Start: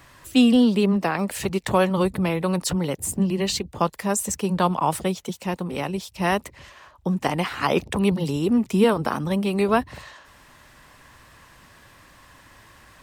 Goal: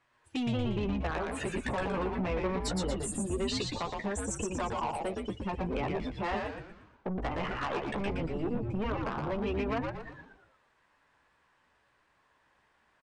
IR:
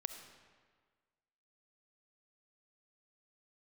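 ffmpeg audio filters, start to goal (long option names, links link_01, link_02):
-filter_complex "[0:a]asettb=1/sr,asplit=3[link_01][link_02][link_03];[link_01]atrim=end=7.074[link_04];[link_02]atrim=start=7.07:end=9.17,asetpts=PTS-STARTPTS,afade=type=in:duration=0.004:curve=qsin,afade=type=out:start_time=2.096:duration=0.004:curve=qsin,aeval=exprs='if(lt(val(0),0),0.251*val(0),val(0))':channel_layout=same[link_05];[link_03]atrim=start=9.166[link_06];[link_04][link_05]acrossfade=duration=0.004:curve1=hsin:curve2=qsin[link_07];[link_07][link_06]acrossfade=duration=0.004:curve1=qsin:curve2=hsin,afftdn=noise_reduction=23:noise_floor=-31,bass=frequency=250:gain=-10,treble=frequency=4000:gain=-10,acompressor=threshold=-31dB:ratio=5,flanger=delay=8.3:depth=7.8:regen=-10:speed=0.21:shape=sinusoidal,asoftclip=type=tanh:threshold=-35.5dB,asplit=7[link_08][link_09][link_10][link_11][link_12][link_13][link_14];[link_09]adelay=117,afreqshift=-130,volume=-3dB[link_15];[link_10]adelay=234,afreqshift=-260,volume=-9.7dB[link_16];[link_11]adelay=351,afreqshift=-390,volume=-16.5dB[link_17];[link_12]adelay=468,afreqshift=-520,volume=-23.2dB[link_18];[link_13]adelay=585,afreqshift=-650,volume=-30dB[link_19];[link_14]adelay=702,afreqshift=-780,volume=-36.7dB[link_20];[link_08][link_15][link_16][link_17][link_18][link_19][link_20]amix=inputs=7:normalize=0,aresample=22050,aresample=44100,volume=7dB"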